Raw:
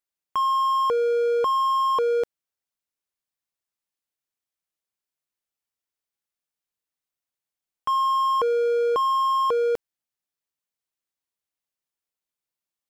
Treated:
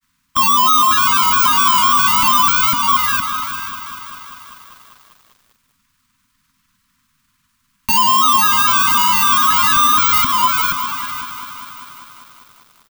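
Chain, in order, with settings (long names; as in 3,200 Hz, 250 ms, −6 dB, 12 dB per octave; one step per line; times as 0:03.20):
each half-wave held at its own peak
repeating echo 484 ms, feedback 18%, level −3.5 dB
bad sample-rate conversion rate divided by 2×, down filtered, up zero stuff
downward compressor 1.5 to 1, threshold −37 dBFS, peak gain reduction 10 dB
dynamic equaliser 930 Hz, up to −5 dB, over −39 dBFS, Q 0.85
granular cloud 100 ms, spray 16 ms, pitch spread up and down by 3 semitones
Chebyshev band-stop filter 270–980 Hz, order 5
tilt shelving filter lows +5.5 dB, about 1,300 Hz
boost into a limiter +32.5 dB
feedback echo at a low word length 197 ms, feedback 80%, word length 6 bits, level −12 dB
level −4 dB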